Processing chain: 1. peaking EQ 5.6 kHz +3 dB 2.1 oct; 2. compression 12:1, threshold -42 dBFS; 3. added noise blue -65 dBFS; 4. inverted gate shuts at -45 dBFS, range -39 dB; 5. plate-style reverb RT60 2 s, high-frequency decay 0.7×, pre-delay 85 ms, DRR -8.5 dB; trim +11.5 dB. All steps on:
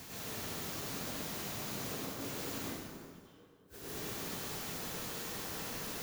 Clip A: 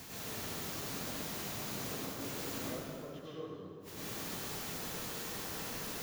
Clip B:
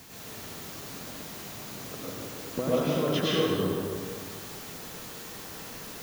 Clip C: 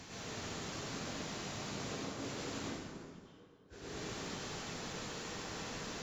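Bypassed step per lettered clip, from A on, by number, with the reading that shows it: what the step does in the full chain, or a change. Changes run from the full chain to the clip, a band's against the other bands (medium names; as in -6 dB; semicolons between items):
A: 2, mean gain reduction 15.5 dB; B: 4, momentary loudness spread change +5 LU; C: 3, 8 kHz band -3.5 dB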